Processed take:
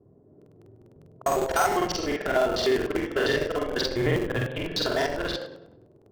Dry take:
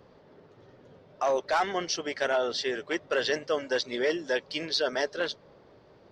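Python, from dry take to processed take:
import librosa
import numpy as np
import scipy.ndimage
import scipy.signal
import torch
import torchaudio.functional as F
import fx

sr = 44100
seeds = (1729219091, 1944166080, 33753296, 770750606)

p1 = fx.wiener(x, sr, points=9)
p2 = fx.resample_bad(p1, sr, factor=6, down='none', up='hold', at=(1.22, 1.77))
p3 = fx.low_shelf(p2, sr, hz=320.0, db=6.5, at=(2.54, 3.3))
p4 = fx.lpc_vocoder(p3, sr, seeds[0], excitation='pitch_kept', order=8, at=(3.9, 4.58))
p5 = fx.env_lowpass(p4, sr, base_hz=340.0, full_db=-25.5)
p6 = scipy.signal.sosfilt(scipy.signal.butter(4, 67.0, 'highpass', fs=sr, output='sos'), p5)
p7 = fx.room_shoebox(p6, sr, seeds[1], volume_m3=3000.0, walls='furnished', distance_m=3.2)
p8 = fx.schmitt(p7, sr, flips_db=-24.5)
p9 = p7 + (p8 * librosa.db_to_amplitude(-8.0))
y = fx.buffer_crackle(p9, sr, first_s=0.37, period_s=0.1, block=2048, kind='repeat')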